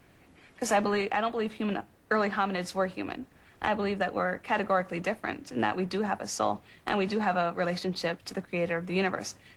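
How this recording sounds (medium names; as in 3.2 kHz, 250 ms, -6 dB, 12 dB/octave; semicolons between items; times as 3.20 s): a quantiser's noise floor 12-bit, dither triangular; Opus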